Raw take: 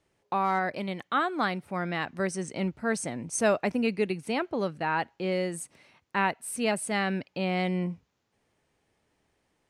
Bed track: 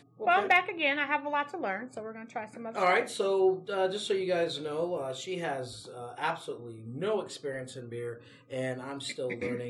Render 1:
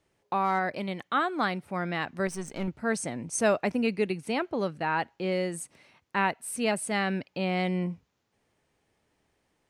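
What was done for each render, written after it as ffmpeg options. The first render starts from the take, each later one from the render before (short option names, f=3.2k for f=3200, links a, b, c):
-filter_complex "[0:a]asettb=1/sr,asplit=3[a][b][c];[a]atrim=end=2.274[d];[b]atrim=start=2.27:end=2.68,asetpts=PTS-STARTPTS,afade=t=in:d=0.004:c=qsin,afade=t=out:st=0.406:d=0.004:c=qsin,aeval=exprs='if(lt(val(0),0),0.447*val(0),val(0))':c=same[e];[c]atrim=start=2.676[f];[d][e]acrossfade=d=0.004:c1=hsin:c2=qsin[g];[g][f]acrossfade=d=0.004:c1=qsin:c2=hsin"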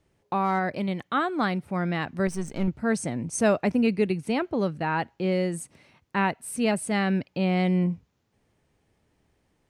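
-af "lowshelf=f=280:g=9.5"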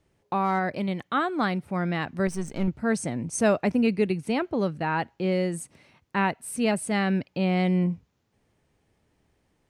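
-af anull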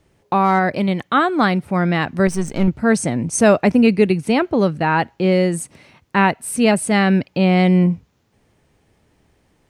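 -af "volume=9.5dB,alimiter=limit=-2dB:level=0:latency=1"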